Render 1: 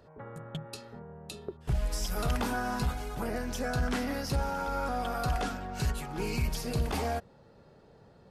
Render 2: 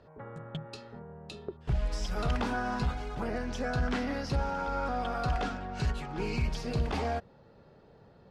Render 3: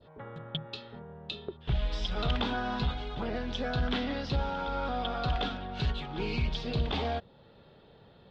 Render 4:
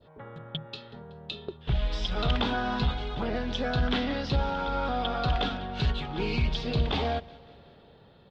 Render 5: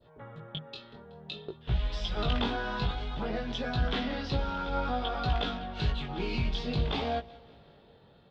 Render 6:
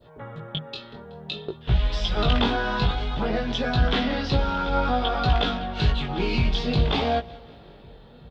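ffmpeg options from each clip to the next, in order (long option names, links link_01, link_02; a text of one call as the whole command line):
ffmpeg -i in.wav -af "lowpass=4700" out.wav
ffmpeg -i in.wav -af "adynamicequalizer=threshold=0.00251:dfrequency=2100:dqfactor=0.73:tfrequency=2100:tqfactor=0.73:attack=5:release=100:ratio=0.375:range=2:mode=cutabove:tftype=bell,lowpass=frequency=3500:width_type=q:width=5.3" out.wav
ffmpeg -i in.wav -af "dynaudnorm=framelen=630:gausssize=5:maxgain=3.5dB,aecho=1:1:187|374|561|748:0.0794|0.0445|0.0249|0.0139" out.wav
ffmpeg -i in.wav -af "flanger=delay=17:depth=5.4:speed=0.55" out.wav
ffmpeg -i in.wav -filter_complex "[0:a]asplit=2[link_01][link_02];[link_02]adelay=1458,volume=-27dB,highshelf=frequency=4000:gain=-32.8[link_03];[link_01][link_03]amix=inputs=2:normalize=0,volume=8dB" out.wav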